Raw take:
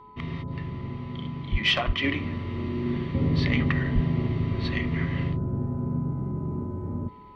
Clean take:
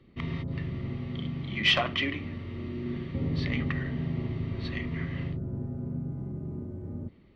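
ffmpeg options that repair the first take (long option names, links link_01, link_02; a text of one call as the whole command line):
ffmpeg -i in.wav -filter_complex "[0:a]bandreject=frequency=426:width_type=h:width=4,bandreject=frequency=852:width_type=h:width=4,bandreject=frequency=1278:width_type=h:width=4,bandreject=frequency=1000:width=30,asplit=3[link_01][link_02][link_03];[link_01]afade=type=out:start_time=1.51:duration=0.02[link_04];[link_02]highpass=frequency=140:width=0.5412,highpass=frequency=140:width=1.3066,afade=type=in:start_time=1.51:duration=0.02,afade=type=out:start_time=1.63:duration=0.02[link_05];[link_03]afade=type=in:start_time=1.63:duration=0.02[link_06];[link_04][link_05][link_06]amix=inputs=3:normalize=0,asplit=3[link_07][link_08][link_09];[link_07]afade=type=out:start_time=1.86:duration=0.02[link_10];[link_08]highpass=frequency=140:width=0.5412,highpass=frequency=140:width=1.3066,afade=type=in:start_time=1.86:duration=0.02,afade=type=out:start_time=1.98:duration=0.02[link_11];[link_09]afade=type=in:start_time=1.98:duration=0.02[link_12];[link_10][link_11][link_12]amix=inputs=3:normalize=0,asplit=3[link_13][link_14][link_15];[link_13]afade=type=out:start_time=3.94:duration=0.02[link_16];[link_14]highpass=frequency=140:width=0.5412,highpass=frequency=140:width=1.3066,afade=type=in:start_time=3.94:duration=0.02,afade=type=out:start_time=4.06:duration=0.02[link_17];[link_15]afade=type=in:start_time=4.06:duration=0.02[link_18];[link_16][link_17][link_18]amix=inputs=3:normalize=0,asetnsamples=nb_out_samples=441:pad=0,asendcmd='2.04 volume volume -6dB',volume=0dB" out.wav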